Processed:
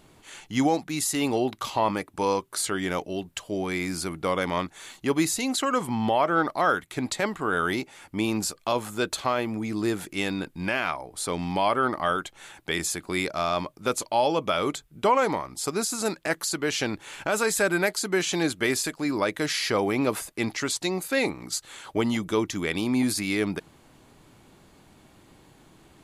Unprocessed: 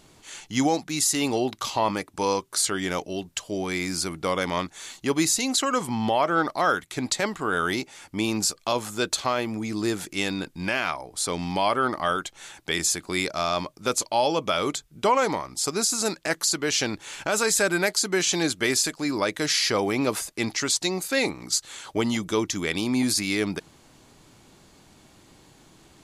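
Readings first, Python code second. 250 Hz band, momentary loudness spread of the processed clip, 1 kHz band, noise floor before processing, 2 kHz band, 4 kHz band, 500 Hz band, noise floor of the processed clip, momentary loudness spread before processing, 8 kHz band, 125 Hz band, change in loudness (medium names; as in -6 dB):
0.0 dB, 7 LU, -0.5 dB, -56 dBFS, -1.0 dB, -4.5 dB, 0.0 dB, -57 dBFS, 7 LU, -5.5 dB, 0.0 dB, -1.5 dB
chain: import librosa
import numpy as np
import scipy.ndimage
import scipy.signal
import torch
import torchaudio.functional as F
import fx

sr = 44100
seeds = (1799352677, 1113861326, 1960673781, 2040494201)

y = fx.peak_eq(x, sr, hz=5800.0, db=-7.5, octaves=1.3)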